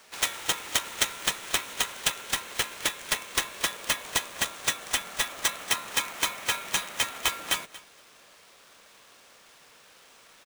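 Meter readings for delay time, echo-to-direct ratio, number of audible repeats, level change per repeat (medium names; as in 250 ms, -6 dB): 232 ms, -19.0 dB, 2, -16.0 dB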